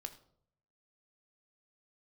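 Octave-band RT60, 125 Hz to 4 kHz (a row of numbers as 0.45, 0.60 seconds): 1.0, 0.75, 0.75, 0.55, 0.40, 0.40 seconds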